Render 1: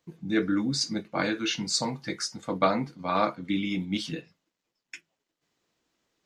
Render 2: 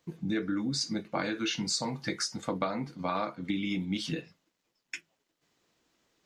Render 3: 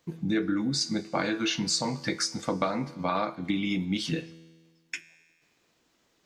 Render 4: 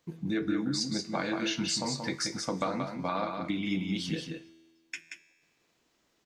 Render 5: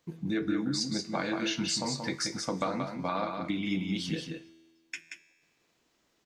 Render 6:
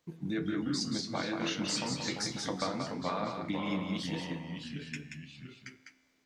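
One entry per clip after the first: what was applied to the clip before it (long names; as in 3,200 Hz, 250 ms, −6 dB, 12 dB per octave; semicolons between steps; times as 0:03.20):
downward compressor 6 to 1, threshold −32 dBFS, peak gain reduction 14 dB; level +3.5 dB
tuned comb filter 82 Hz, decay 1.5 s, harmonics all, mix 50%; level +9 dB
single-tap delay 180 ms −5.5 dB; level −4 dB
no processing that can be heard
delay with pitch and tempo change per echo 122 ms, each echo −2 semitones, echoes 2, each echo −6 dB; level −3.5 dB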